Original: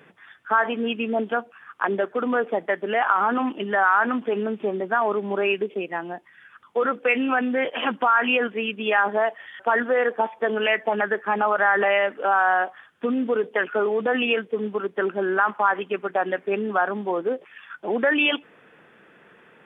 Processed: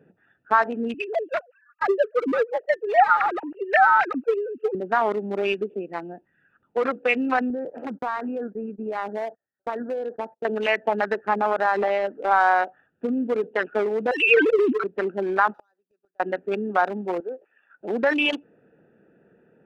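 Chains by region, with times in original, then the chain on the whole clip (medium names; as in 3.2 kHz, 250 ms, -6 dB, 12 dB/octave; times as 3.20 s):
0.94–4.75 s: formants replaced by sine waves + treble shelf 2.5 kHz +10 dB
7.50–10.45 s: low-pass 1.5 kHz 24 dB/octave + gate -40 dBFS, range -29 dB + compression 2:1, threshold -25 dBFS
11.34–12.31 s: low-pass 1.2 kHz 6 dB/octave + peaking EQ 310 Hz +2 dB 0.86 oct
14.11–14.84 s: formants replaced by sine waves + peaking EQ 2.7 kHz +9.5 dB 1.7 oct + decay stretcher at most 27 dB/s
15.54–16.20 s: median filter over 15 samples + tilt EQ +4.5 dB/octave + inverted gate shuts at -23 dBFS, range -36 dB
17.20–17.81 s: high-pass 500 Hz + distance through air 260 m
whole clip: local Wiener filter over 41 samples; dynamic bell 870 Hz, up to +4 dB, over -34 dBFS, Q 1.5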